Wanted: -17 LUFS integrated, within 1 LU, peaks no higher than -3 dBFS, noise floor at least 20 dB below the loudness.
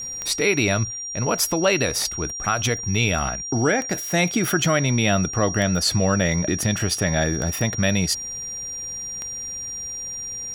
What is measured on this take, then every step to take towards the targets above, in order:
clicks found 6; steady tone 5.7 kHz; tone level -29 dBFS; loudness -22.0 LUFS; peak level -6.5 dBFS; loudness target -17.0 LUFS
-> de-click; band-stop 5.7 kHz, Q 30; trim +5 dB; peak limiter -3 dBFS

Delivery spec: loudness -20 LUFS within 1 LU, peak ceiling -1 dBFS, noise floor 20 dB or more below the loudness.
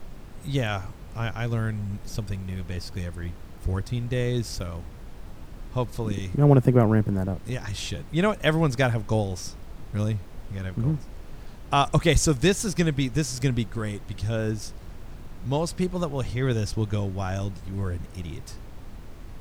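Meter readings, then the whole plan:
noise floor -42 dBFS; noise floor target -47 dBFS; loudness -26.5 LUFS; peak level -3.5 dBFS; loudness target -20.0 LUFS
-> noise print and reduce 6 dB; trim +6.5 dB; peak limiter -1 dBFS

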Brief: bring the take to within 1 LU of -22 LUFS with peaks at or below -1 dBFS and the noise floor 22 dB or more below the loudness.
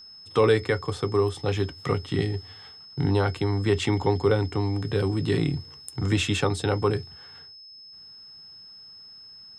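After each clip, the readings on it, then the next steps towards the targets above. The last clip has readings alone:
steady tone 5.2 kHz; tone level -44 dBFS; loudness -25.5 LUFS; peak level -9.0 dBFS; loudness target -22.0 LUFS
-> band-stop 5.2 kHz, Q 30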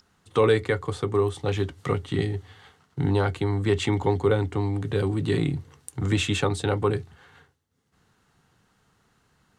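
steady tone not found; loudness -25.5 LUFS; peak level -9.0 dBFS; loudness target -22.0 LUFS
-> trim +3.5 dB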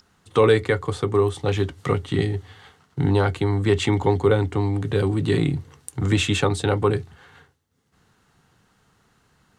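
loudness -22.0 LUFS; peak level -5.5 dBFS; noise floor -64 dBFS

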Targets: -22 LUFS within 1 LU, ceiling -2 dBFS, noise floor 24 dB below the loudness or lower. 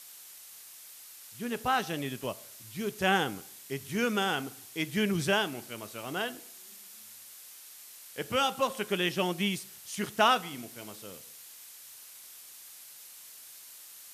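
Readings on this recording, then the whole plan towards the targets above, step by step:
noise floor -50 dBFS; noise floor target -55 dBFS; loudness -31.0 LUFS; peak level -11.5 dBFS; loudness target -22.0 LUFS
-> noise reduction 6 dB, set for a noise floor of -50 dBFS; trim +9 dB

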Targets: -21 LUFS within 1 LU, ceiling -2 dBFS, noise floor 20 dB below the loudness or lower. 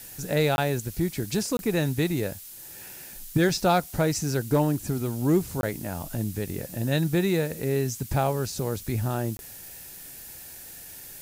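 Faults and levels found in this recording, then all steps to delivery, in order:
dropouts 4; longest dropout 21 ms; noise floor -43 dBFS; noise floor target -47 dBFS; loudness -26.5 LUFS; peak level -12.0 dBFS; loudness target -21.0 LUFS
-> interpolate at 0.56/1.57/5.61/9.37 s, 21 ms; noise reduction 6 dB, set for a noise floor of -43 dBFS; trim +5.5 dB

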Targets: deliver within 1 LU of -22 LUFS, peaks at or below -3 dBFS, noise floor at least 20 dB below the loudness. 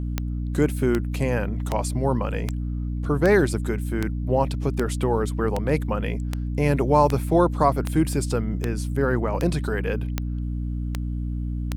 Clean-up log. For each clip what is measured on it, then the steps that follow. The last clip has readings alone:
clicks found 16; hum 60 Hz; highest harmonic 300 Hz; hum level -25 dBFS; loudness -24.0 LUFS; peak level -5.0 dBFS; loudness target -22.0 LUFS
-> de-click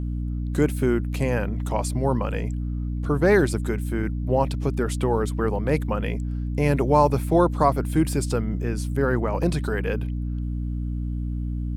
clicks found 0; hum 60 Hz; highest harmonic 300 Hz; hum level -25 dBFS
-> hum notches 60/120/180/240/300 Hz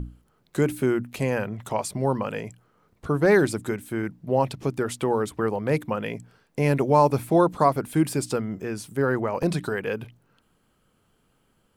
hum not found; loudness -25.0 LUFS; peak level -6.5 dBFS; loudness target -22.0 LUFS
-> trim +3 dB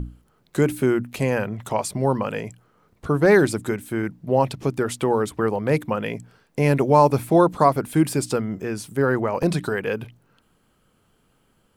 loudness -22.0 LUFS; peak level -3.5 dBFS; noise floor -64 dBFS

